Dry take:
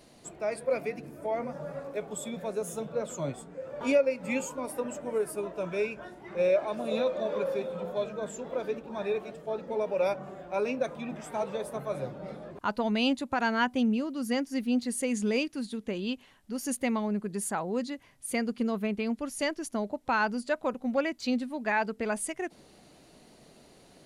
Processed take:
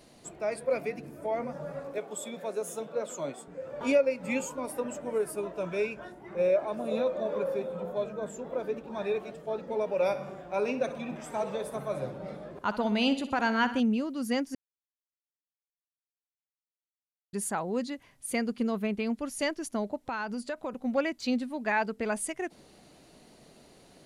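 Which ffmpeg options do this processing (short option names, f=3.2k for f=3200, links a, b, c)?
-filter_complex "[0:a]asettb=1/sr,asplit=3[a][b][c];[a]atrim=end=1.984[d];[b]atrim=start=1.98:end=3.48,asetpts=PTS-STARTPTS,afade=t=in:d=0.004:c=qsin,afade=t=out:st=1.496:d=0.004:c=qsin,highpass=270[e];[c]atrim=start=3.476[f];[d][e]acrossfade=d=0.004:c1=hsin:c2=qsin[g];[g][f]acrossfade=d=0.004:c1=qsin:c2=hsin,asettb=1/sr,asplit=3[h][i][j];[h]atrim=end=6.124[k];[i]atrim=start=6.12:end=8.77,asetpts=PTS-STARTPTS,afade=t=in:d=0.004:c=qsin,afade=t=out:st=2.646:d=0.004:c=qsin,equalizer=f=4k:w=0.56:g=-6[l];[j]atrim=start=8.766[m];[k][l]acrossfade=d=0.004:c1=hsin:c2=qsin[n];[n][m]acrossfade=d=0.004:c1=qsin:c2=hsin,asettb=1/sr,asplit=3[o][p][q];[o]atrim=end=9.934[r];[p]atrim=start=9.93:end=13.8,asetpts=PTS-STARTPTS,afade=t=in:d=0.004:c=qsin,afade=t=out:st=3.866:d=0.004:c=qsin,aecho=1:1:62|124|186|248|310|372:0.224|0.13|0.0753|0.0437|0.0253|0.0147,atrim=end_sample=170667[s];[q]atrim=start=13.796[t];[r][s]acrossfade=d=0.004:c1=hsin:c2=qsin[u];[u][t]acrossfade=d=0.004:c1=qsin:c2=hsin,asettb=1/sr,asplit=3[v][w][x];[v]atrim=end=19.964[y];[w]atrim=start=19.96:end=20.73,asetpts=PTS-STARTPTS,afade=t=in:d=0.004:c=qsin,afade=t=out:st=0.766:d=0.004:c=qsin,acompressor=threshold=-30dB:ratio=5:attack=3.2:release=140:knee=1:detection=peak[z];[x]atrim=start=20.726[aa];[y][z]acrossfade=d=0.004:c1=hsin:c2=qsin[ab];[ab][aa]acrossfade=d=0.004:c1=qsin:c2=hsin,asplit=3[ac][ad][ae];[ac]atrim=end=14.55,asetpts=PTS-STARTPTS,afade=t=out:st=14.546:d=0.004:c=hsin[af];[ad]atrim=start=14.55:end=17.33,asetpts=PTS-STARTPTS,volume=0[ag];[ae]atrim=start=17.33,asetpts=PTS-STARTPTS,afade=t=in:d=0.004:c=hsin[ah];[af][ag][ah]concat=n=3:v=0:a=1"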